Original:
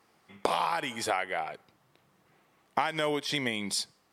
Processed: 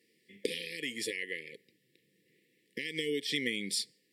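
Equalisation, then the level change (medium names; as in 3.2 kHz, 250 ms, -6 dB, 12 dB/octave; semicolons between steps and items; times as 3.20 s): high-pass 190 Hz 12 dB/octave; brick-wall FIR band-stop 530–1700 Hz; band-stop 6.3 kHz, Q 6.2; -1.5 dB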